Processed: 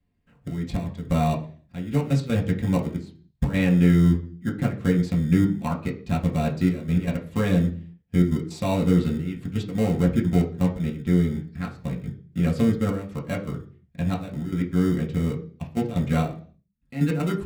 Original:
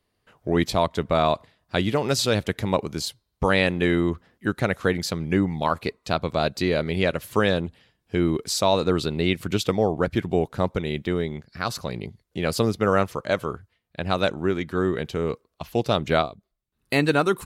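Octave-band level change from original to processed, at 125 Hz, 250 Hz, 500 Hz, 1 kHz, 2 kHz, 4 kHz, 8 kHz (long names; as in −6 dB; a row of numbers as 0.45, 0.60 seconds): +5.5, +3.5, −7.0, −7.5, −8.5, −12.0, −10.0 decibels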